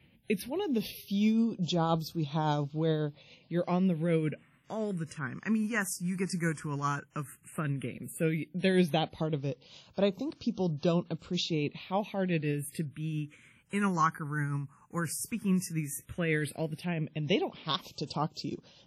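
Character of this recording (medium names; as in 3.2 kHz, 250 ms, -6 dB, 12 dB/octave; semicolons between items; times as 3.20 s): phasing stages 4, 0.12 Hz, lowest notch 590–1900 Hz; tremolo triangle 7.3 Hz, depth 40%; WMA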